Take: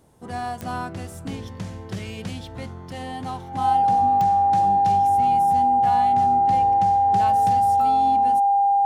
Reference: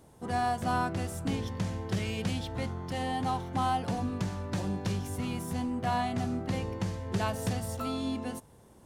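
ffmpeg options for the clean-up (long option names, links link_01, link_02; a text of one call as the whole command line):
ffmpeg -i in.wav -af "adeclick=threshold=4,bandreject=frequency=800:width=30" out.wav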